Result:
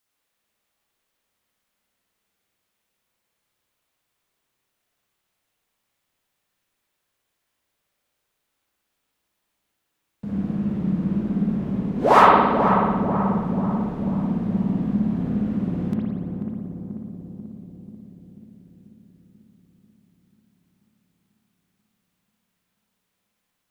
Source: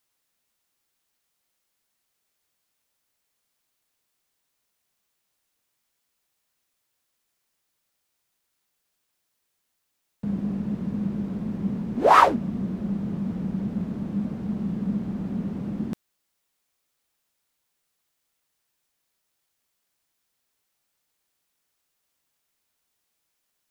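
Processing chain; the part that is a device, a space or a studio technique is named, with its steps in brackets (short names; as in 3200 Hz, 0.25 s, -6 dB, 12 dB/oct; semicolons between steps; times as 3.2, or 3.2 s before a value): dub delay into a spring reverb (darkening echo 0.489 s, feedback 64%, low-pass 1000 Hz, level -4.5 dB; spring tank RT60 1.2 s, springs 56 ms, chirp 30 ms, DRR -4 dB); gain -2 dB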